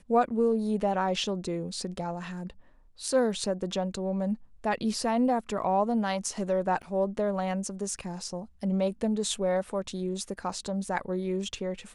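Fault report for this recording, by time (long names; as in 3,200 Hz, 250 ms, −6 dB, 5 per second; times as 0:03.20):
0:06.82–0:06.83: drop-out 8 ms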